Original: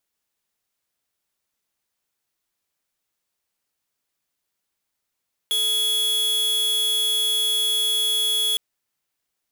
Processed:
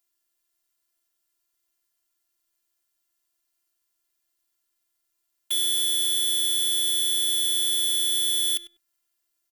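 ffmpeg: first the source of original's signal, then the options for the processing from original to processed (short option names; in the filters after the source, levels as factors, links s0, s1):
-f lavfi -i "aevalsrc='0.0841*(2*lt(mod(3360*t,1),0.5)-1)':d=3.06:s=44100"
-filter_complex "[0:a]highshelf=f=6500:g=8,afftfilt=real='hypot(re,im)*cos(PI*b)':imag='0':win_size=512:overlap=0.75,asplit=2[s0][s1];[s1]adelay=98,lowpass=f=1800:p=1,volume=0.282,asplit=2[s2][s3];[s3]adelay=98,lowpass=f=1800:p=1,volume=0.18[s4];[s0][s2][s4]amix=inputs=3:normalize=0"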